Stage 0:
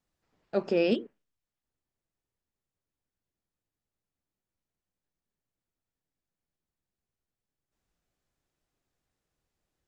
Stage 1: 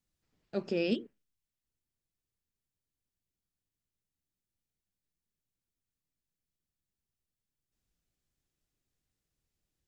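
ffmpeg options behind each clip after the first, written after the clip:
ffmpeg -i in.wav -af "equalizer=frequency=850:width=0.49:gain=-10" out.wav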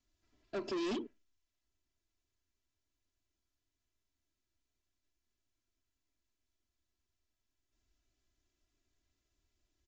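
ffmpeg -i in.wav -af "aecho=1:1:3:0.97,aresample=16000,asoftclip=type=tanh:threshold=-35dB,aresample=44100,volume=1dB" out.wav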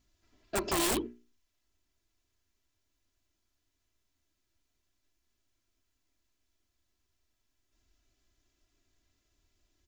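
ffmpeg -i in.wav -af "aeval=exprs='val(0)+0.0001*(sin(2*PI*60*n/s)+sin(2*PI*2*60*n/s)/2+sin(2*PI*3*60*n/s)/3+sin(2*PI*4*60*n/s)/4+sin(2*PI*5*60*n/s)/5)':channel_layout=same,aeval=exprs='(mod(50.1*val(0)+1,2)-1)/50.1':channel_layout=same,bandreject=frequency=60:width_type=h:width=6,bandreject=frequency=120:width_type=h:width=6,bandreject=frequency=180:width_type=h:width=6,bandreject=frequency=240:width_type=h:width=6,bandreject=frequency=300:width_type=h:width=6,bandreject=frequency=360:width_type=h:width=6,bandreject=frequency=420:width_type=h:width=6,volume=7dB" out.wav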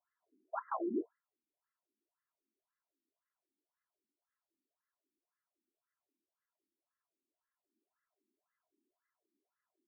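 ffmpeg -i in.wav -af "afftfilt=real='re*between(b*sr/1024,270*pow(1500/270,0.5+0.5*sin(2*PI*1.9*pts/sr))/1.41,270*pow(1500/270,0.5+0.5*sin(2*PI*1.9*pts/sr))*1.41)':imag='im*between(b*sr/1024,270*pow(1500/270,0.5+0.5*sin(2*PI*1.9*pts/sr))/1.41,270*pow(1500/270,0.5+0.5*sin(2*PI*1.9*pts/sr))*1.41)':win_size=1024:overlap=0.75,volume=-1dB" out.wav

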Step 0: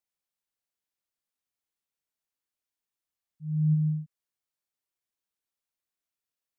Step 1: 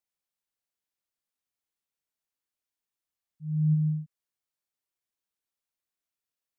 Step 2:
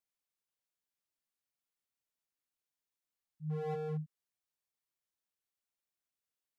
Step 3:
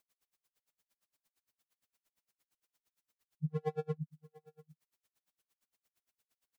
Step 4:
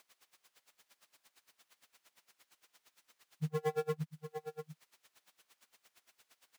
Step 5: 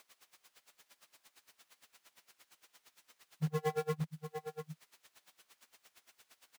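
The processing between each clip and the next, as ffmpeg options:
ffmpeg -i in.wav -af anull out.wav
ffmpeg -i in.wav -af "aeval=exprs='0.0376*(abs(mod(val(0)/0.0376+3,4)-2)-1)':channel_layout=same,volume=-3.5dB" out.wav
ffmpeg -i in.wav -af "acompressor=threshold=-43dB:ratio=6,aecho=1:1:702:0.0794,aeval=exprs='val(0)*pow(10,-39*(0.5-0.5*cos(2*PI*8.7*n/s))/20)':channel_layout=same,volume=14.5dB" out.wav
ffmpeg -i in.wav -filter_complex "[0:a]acompressor=threshold=-45dB:ratio=2.5,asplit=2[link_01][link_02];[link_02]highpass=frequency=720:poles=1,volume=16dB,asoftclip=type=tanh:threshold=-35dB[link_03];[link_01][link_03]amix=inputs=2:normalize=0,lowpass=frequency=4200:poles=1,volume=-6dB,acrusher=bits=5:mode=log:mix=0:aa=0.000001,volume=9.5dB" out.wav
ffmpeg -i in.wav -filter_complex "[0:a]asplit=2[link_01][link_02];[link_02]adelay=12,volume=-12dB[link_03];[link_01][link_03]amix=inputs=2:normalize=0,asplit=2[link_04][link_05];[link_05]aeval=exprs='(mod(79.4*val(0)+1,2)-1)/79.4':channel_layout=same,volume=-11dB[link_06];[link_04][link_06]amix=inputs=2:normalize=0,volume=1dB" out.wav

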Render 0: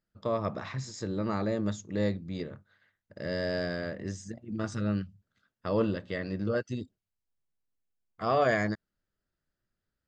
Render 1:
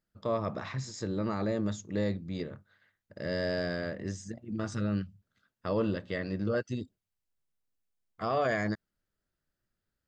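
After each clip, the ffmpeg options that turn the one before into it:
ffmpeg -i in.wav -af "alimiter=limit=-20.5dB:level=0:latency=1:release=28" out.wav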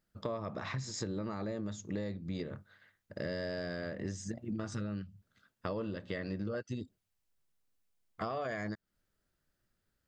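ffmpeg -i in.wav -af "acompressor=threshold=-38dB:ratio=10,volume=4dB" out.wav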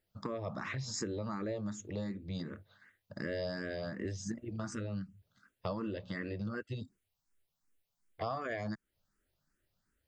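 ffmpeg -i in.wav -filter_complex "[0:a]asplit=2[link_01][link_02];[link_02]afreqshift=2.7[link_03];[link_01][link_03]amix=inputs=2:normalize=1,volume=3dB" out.wav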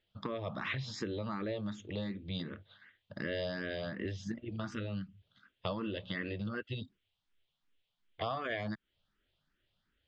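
ffmpeg -i in.wav -af "lowpass=frequency=3300:width_type=q:width=4.3" out.wav

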